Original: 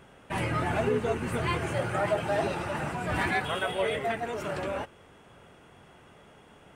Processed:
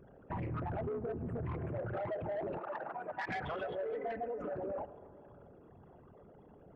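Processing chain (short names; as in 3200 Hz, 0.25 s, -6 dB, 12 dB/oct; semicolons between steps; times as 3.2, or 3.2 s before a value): formant sharpening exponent 3; reverb RT60 2.2 s, pre-delay 63 ms, DRR 16.5 dB; soft clip -24 dBFS, distortion -16 dB; 2.59–3.29 HPF 530 Hz 12 dB/oct; 3.92–4.55 comb 4 ms, depth 96%; compressor, threshold -32 dBFS, peak gain reduction 7 dB; Doppler distortion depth 0.24 ms; gain -3.5 dB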